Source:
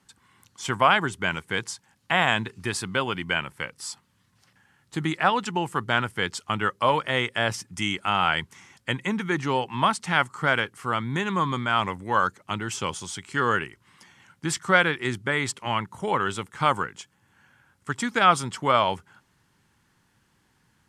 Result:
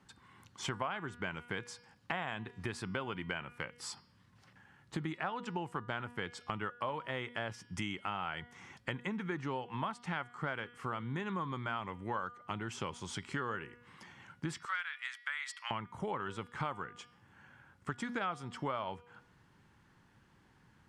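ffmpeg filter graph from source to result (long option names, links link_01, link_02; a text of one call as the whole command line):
ffmpeg -i in.wav -filter_complex "[0:a]asettb=1/sr,asplit=3[link_01][link_02][link_03];[link_01]atrim=end=14.654[link_04];[link_02]atrim=start=14.65:end=15.71,asetpts=PTS-STARTPTS,afade=type=in:duration=0.004:curve=qsin,afade=type=out:start_time=1.056:duration=0.004:curve=qsin,highpass=frequency=1300:width=0.5412,highpass=frequency=1300:width=1.3066,asoftclip=type=hard:threshold=-11dB[link_05];[link_03]atrim=start=15.706[link_06];[link_04][link_05]acrossfade=duration=0.004:curve1=hsin:curve2=qsin[link_07];[link_07][link_06]acrossfade=duration=0.004:curve1=qsin:curve2=hsin,lowpass=frequency=2200:poles=1,bandreject=frequency=241.1:width_type=h:width=4,bandreject=frequency=482.2:width_type=h:width=4,bandreject=frequency=723.3:width_type=h:width=4,bandreject=frequency=964.4:width_type=h:width=4,bandreject=frequency=1205.5:width_type=h:width=4,bandreject=frequency=1446.6:width_type=h:width=4,bandreject=frequency=1687.7:width_type=h:width=4,bandreject=frequency=1928.8:width_type=h:width=4,bandreject=frequency=2169.9:width_type=h:width=4,bandreject=frequency=2411:width_type=h:width=4,bandreject=frequency=2652.1:width_type=h:width=4,bandreject=frequency=2893.2:width_type=h:width=4,bandreject=frequency=3134.3:width_type=h:width=4,bandreject=frequency=3375.4:width_type=h:width=4,bandreject=frequency=3616.5:width_type=h:width=4,bandreject=frequency=3857.6:width_type=h:width=4,bandreject=frequency=4098.7:width_type=h:width=4,bandreject=frequency=4339.8:width_type=h:width=4,bandreject=frequency=4580.9:width_type=h:width=4,bandreject=frequency=4822:width_type=h:width=4,bandreject=frequency=5063.1:width_type=h:width=4,bandreject=frequency=5304.2:width_type=h:width=4,bandreject=frequency=5545.3:width_type=h:width=4,acompressor=threshold=-38dB:ratio=5,volume=1.5dB" out.wav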